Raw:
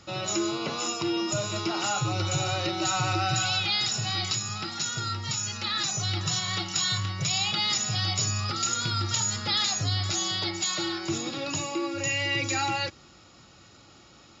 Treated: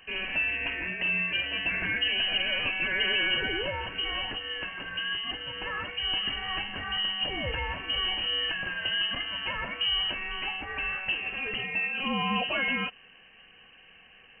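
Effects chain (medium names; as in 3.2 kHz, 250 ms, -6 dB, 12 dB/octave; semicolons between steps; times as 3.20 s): frequency inversion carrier 3 kHz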